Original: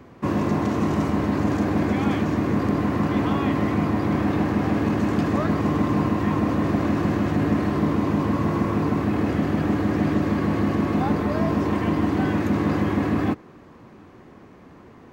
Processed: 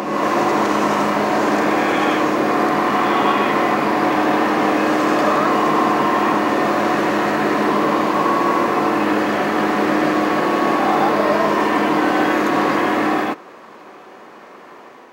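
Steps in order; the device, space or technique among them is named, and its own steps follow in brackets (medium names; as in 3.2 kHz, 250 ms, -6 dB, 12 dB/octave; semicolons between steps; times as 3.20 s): ghost voice (reverse; reverberation RT60 1.9 s, pre-delay 50 ms, DRR -1.5 dB; reverse; high-pass 520 Hz 12 dB/octave); trim +8.5 dB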